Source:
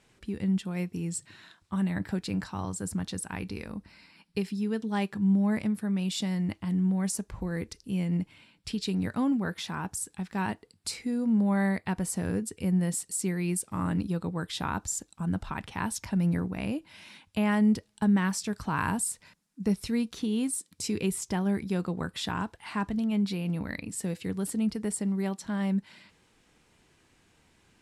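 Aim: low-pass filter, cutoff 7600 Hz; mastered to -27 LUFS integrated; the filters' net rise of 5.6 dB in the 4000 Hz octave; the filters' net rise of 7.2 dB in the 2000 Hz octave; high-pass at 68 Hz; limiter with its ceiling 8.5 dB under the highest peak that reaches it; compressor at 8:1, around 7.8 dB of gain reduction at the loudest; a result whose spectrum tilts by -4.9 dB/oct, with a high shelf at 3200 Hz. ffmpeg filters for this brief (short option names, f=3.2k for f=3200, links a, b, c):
-af "highpass=68,lowpass=7.6k,equalizer=f=2k:t=o:g=9,highshelf=f=3.2k:g=-6.5,equalizer=f=4k:t=o:g=9,acompressor=threshold=-28dB:ratio=8,volume=8dB,alimiter=limit=-17dB:level=0:latency=1"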